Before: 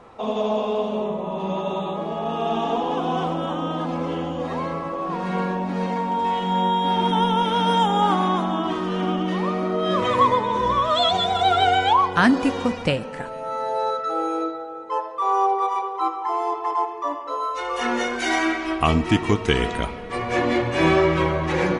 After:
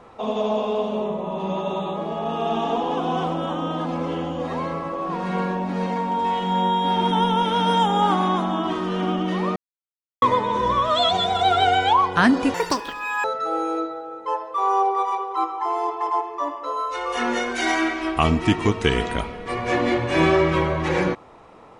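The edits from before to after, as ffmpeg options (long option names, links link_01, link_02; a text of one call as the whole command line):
ffmpeg -i in.wav -filter_complex "[0:a]asplit=5[link_01][link_02][link_03][link_04][link_05];[link_01]atrim=end=9.56,asetpts=PTS-STARTPTS,afade=type=out:start_time=9.556:duration=0.004:curve=hsin[link_06];[link_02]atrim=start=9.56:end=10.22,asetpts=PTS-STARTPTS,volume=0[link_07];[link_03]atrim=start=10.22:end=12.544,asetpts=PTS-STARTPTS,afade=type=in:duration=0.004:curve=hsin[link_08];[link_04]atrim=start=12.54:end=13.88,asetpts=PTS-STARTPTS,asetrate=84231,aresample=44100,atrim=end_sample=30939,asetpts=PTS-STARTPTS[link_09];[link_05]atrim=start=13.876[link_10];[link_06][link_07][link_08]concat=n=3:v=0:a=1[link_11];[link_11][link_09]acrossfade=duration=0.004:curve1=hsin:curve2=hsin[link_12];[link_12][link_10]acrossfade=duration=0.004:curve1=hsin:curve2=hsin" out.wav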